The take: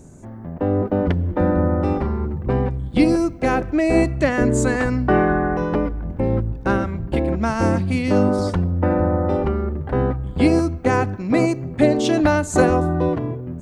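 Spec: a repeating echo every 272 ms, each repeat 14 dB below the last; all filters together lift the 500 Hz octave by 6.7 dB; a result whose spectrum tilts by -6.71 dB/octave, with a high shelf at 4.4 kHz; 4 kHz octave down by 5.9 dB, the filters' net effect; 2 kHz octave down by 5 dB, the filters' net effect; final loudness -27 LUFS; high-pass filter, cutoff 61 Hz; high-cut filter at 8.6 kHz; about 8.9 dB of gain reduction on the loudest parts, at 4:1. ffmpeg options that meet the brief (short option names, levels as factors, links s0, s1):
-af "highpass=61,lowpass=8600,equalizer=f=500:t=o:g=8.5,equalizer=f=2000:t=o:g=-7,equalizer=f=4000:t=o:g=-8.5,highshelf=f=4400:g=5.5,acompressor=threshold=0.158:ratio=4,aecho=1:1:272|544:0.2|0.0399,volume=0.501"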